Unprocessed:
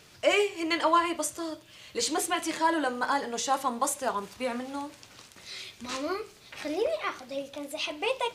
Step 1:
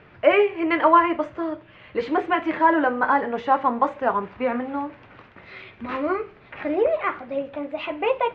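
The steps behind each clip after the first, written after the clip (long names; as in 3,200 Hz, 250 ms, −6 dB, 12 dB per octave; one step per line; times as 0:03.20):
low-pass filter 2,200 Hz 24 dB per octave
level +8 dB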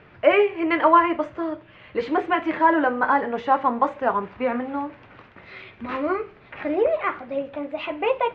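no processing that can be heard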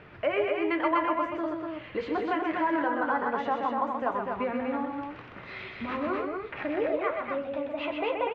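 downward compressor 2 to 1, threshold −34 dBFS, peak gain reduction 13 dB
on a send: loudspeakers that aren't time-aligned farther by 44 metres −5 dB, 84 metres −4 dB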